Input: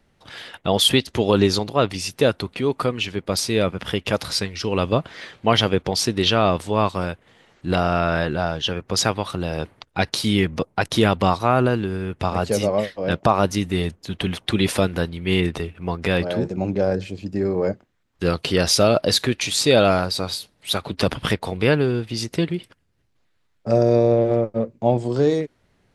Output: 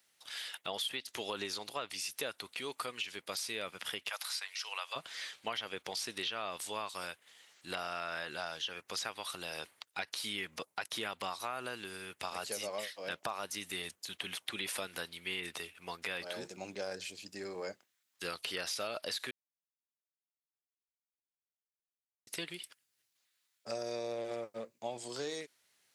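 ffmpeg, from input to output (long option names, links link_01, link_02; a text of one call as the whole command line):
ffmpeg -i in.wav -filter_complex "[0:a]asplit=3[link_01][link_02][link_03];[link_01]afade=type=out:start_time=4.08:duration=0.02[link_04];[link_02]highpass=frequency=720:width=0.5412,highpass=frequency=720:width=1.3066,afade=type=in:start_time=4.08:duration=0.02,afade=type=out:start_time=4.95:duration=0.02[link_05];[link_03]afade=type=in:start_time=4.95:duration=0.02[link_06];[link_04][link_05][link_06]amix=inputs=3:normalize=0,asplit=3[link_07][link_08][link_09];[link_07]atrim=end=19.31,asetpts=PTS-STARTPTS,afade=type=out:start_time=19.306:duration=0.004:curve=hsin[link_10];[link_08]atrim=start=19.31:end=22.27,asetpts=PTS-STARTPTS,volume=0[link_11];[link_09]atrim=start=22.27,asetpts=PTS-STARTPTS,afade=type=in:duration=0.004:curve=hsin[link_12];[link_10][link_11][link_12]concat=n=3:v=0:a=1,acrossover=split=2600[link_13][link_14];[link_14]acompressor=threshold=-39dB:ratio=4:attack=1:release=60[link_15];[link_13][link_15]amix=inputs=2:normalize=0,aderivative,acompressor=threshold=-39dB:ratio=6,volume=4.5dB" out.wav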